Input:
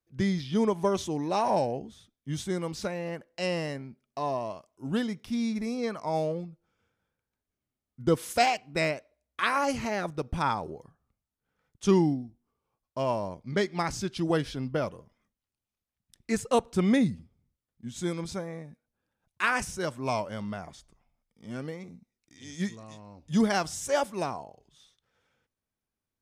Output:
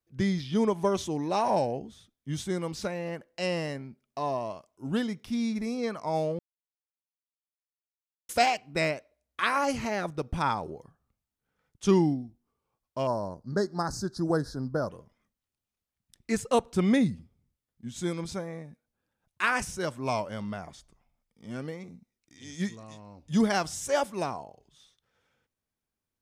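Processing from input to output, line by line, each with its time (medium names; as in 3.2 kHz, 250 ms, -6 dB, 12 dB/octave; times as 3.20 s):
6.39–8.29 s: mute
13.07–14.90 s: Chebyshev band-stop 1.6–4.3 kHz, order 3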